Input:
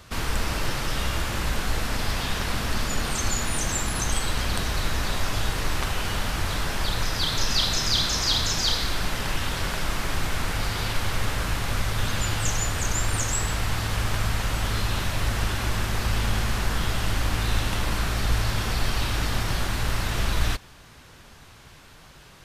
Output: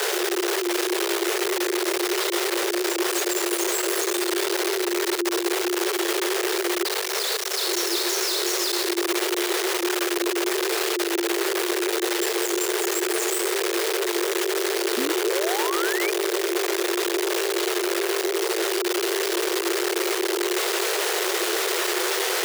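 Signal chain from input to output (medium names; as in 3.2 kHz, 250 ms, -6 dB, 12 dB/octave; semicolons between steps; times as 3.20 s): one-bit comparator; 6.83–7.61 s: high-pass 43 Hz 12 dB/octave; frequency shift +340 Hz; 14.97–16.11 s: painted sound rise 240–2500 Hz -30 dBFS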